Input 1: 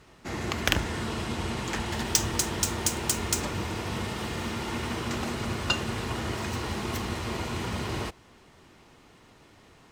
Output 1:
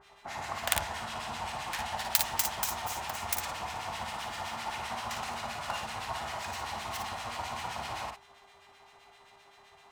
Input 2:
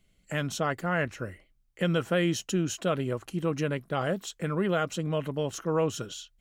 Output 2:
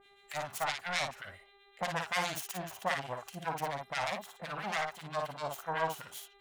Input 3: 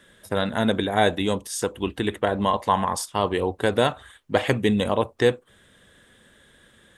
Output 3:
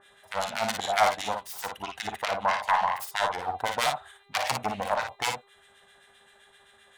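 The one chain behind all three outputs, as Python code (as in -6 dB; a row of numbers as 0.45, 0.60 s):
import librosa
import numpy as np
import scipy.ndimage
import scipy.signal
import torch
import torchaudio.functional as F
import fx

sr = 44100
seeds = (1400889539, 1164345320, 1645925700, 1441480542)

y = fx.self_delay(x, sr, depth_ms=0.51)
y = fx.low_shelf_res(y, sr, hz=540.0, db=-11.0, q=3.0)
y = fx.dmg_buzz(y, sr, base_hz=400.0, harmonics=10, level_db=-59.0, tilt_db=-2, odd_only=False)
y = fx.harmonic_tremolo(y, sr, hz=7.7, depth_pct=100, crossover_hz=1400.0)
y = fx.room_early_taps(y, sr, ms=(43, 56), db=(-12.0, -5.5))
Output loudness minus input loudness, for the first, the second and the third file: -4.5, -6.5, -5.0 LU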